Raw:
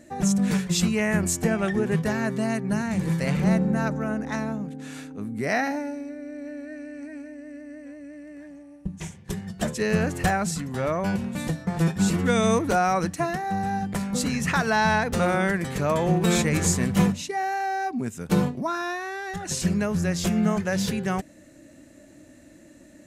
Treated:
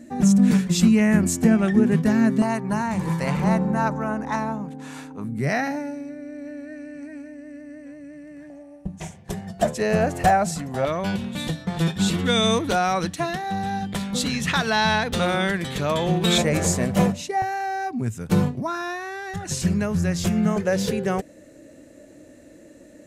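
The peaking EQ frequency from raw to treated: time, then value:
peaking EQ +12.5 dB 0.57 oct
240 Hz
from 2.42 s 960 Hz
from 5.24 s 140 Hz
from 8.50 s 680 Hz
from 10.85 s 3.5 kHz
from 16.38 s 610 Hz
from 17.42 s 110 Hz
from 20.56 s 470 Hz

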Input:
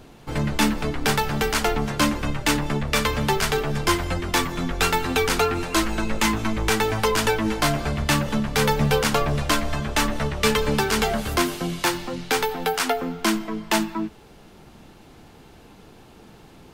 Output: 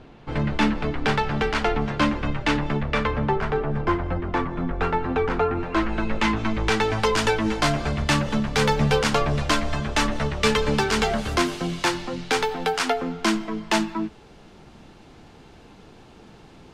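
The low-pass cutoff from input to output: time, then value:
2.73 s 3.3 kHz
3.31 s 1.4 kHz
5.50 s 1.4 kHz
6.02 s 2.9 kHz
7.19 s 7.1 kHz

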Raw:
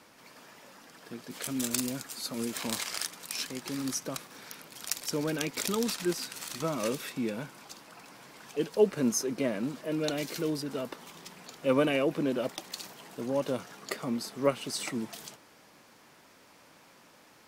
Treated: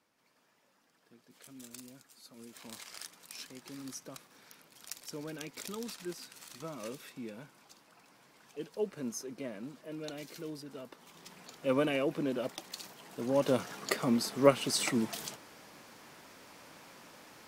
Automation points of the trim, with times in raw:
2.34 s -18.5 dB
3.07 s -11 dB
10.92 s -11 dB
11.33 s -4 dB
13.02 s -4 dB
13.54 s +3.5 dB

